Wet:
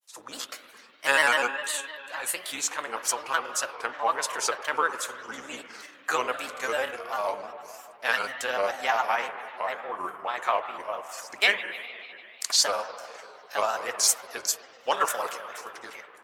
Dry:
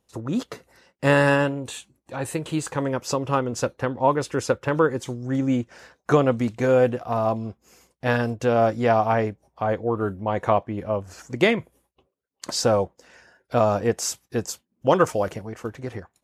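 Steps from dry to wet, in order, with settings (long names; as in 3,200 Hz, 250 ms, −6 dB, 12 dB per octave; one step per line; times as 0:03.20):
sub-octave generator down 2 octaves, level +1 dB
high-pass filter 1,200 Hz 12 dB per octave
high-shelf EQ 8,100 Hz +11.5 dB
spring reverb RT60 2.8 s, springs 42/53 ms, chirp 80 ms, DRR 8 dB
granular cloud, spray 15 ms, pitch spread up and down by 3 semitones
level +3.5 dB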